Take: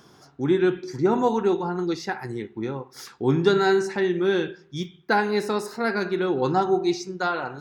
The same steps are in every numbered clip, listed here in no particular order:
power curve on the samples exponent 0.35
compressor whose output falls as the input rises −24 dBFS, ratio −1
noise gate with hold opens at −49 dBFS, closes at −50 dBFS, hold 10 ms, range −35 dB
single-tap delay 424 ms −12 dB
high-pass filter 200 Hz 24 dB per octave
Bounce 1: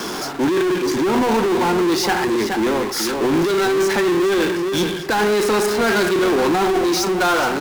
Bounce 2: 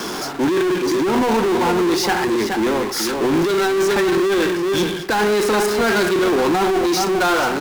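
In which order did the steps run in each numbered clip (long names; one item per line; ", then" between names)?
noise gate with hold, then high-pass filter, then compressor whose output falls as the input rises, then single-tap delay, then power curve on the samples
single-tap delay, then noise gate with hold, then high-pass filter, then compressor whose output falls as the input rises, then power curve on the samples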